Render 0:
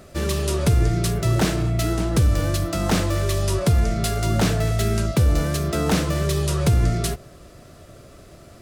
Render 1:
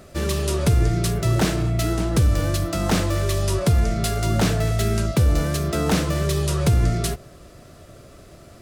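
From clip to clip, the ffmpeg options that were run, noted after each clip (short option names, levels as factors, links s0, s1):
-af anull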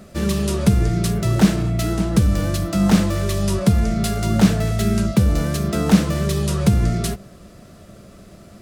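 -af "equalizer=f=200:w=5.7:g=15"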